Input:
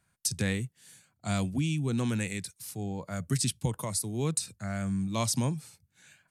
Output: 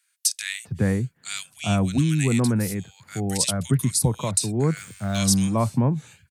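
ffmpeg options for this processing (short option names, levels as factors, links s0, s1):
-filter_complex "[0:a]asettb=1/sr,asplit=3[s0][s1][s2];[s0]atrim=end=4.774[s3];[s1]atrim=start=4.77:end=5.18,asetpts=PTS-STARTPTS,afade=t=in:d=0.004:c=qsin,afade=t=out:st=0.406:d=0.004:c=qsin,aeval=exprs='val(0)+0.5*0.0075*sgn(val(0))':c=same[s4];[s2]atrim=start=5.176[s5];[s3][s4]acrossfade=d=0.004:c1=hsin:c2=qsin[s6];[s6][s5]acrossfade=d=0.004:c1=qsin:c2=hsin,acrossover=split=1700[s7][s8];[s7]adelay=400[s9];[s9][s8]amix=inputs=2:normalize=0,volume=2.66"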